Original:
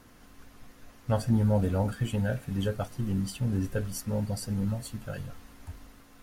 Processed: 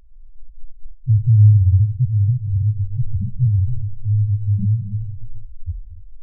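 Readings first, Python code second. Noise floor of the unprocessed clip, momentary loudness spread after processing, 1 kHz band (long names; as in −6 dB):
−55 dBFS, 20 LU, below −40 dB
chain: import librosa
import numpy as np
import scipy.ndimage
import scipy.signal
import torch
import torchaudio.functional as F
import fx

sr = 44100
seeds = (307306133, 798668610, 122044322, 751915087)

y = fx.riaa(x, sr, side='playback')
y = fx.spec_topn(y, sr, count=1)
y = fx.rev_gated(y, sr, seeds[0], gate_ms=320, shape='rising', drr_db=11.0)
y = y * 10.0 ** (7.0 / 20.0)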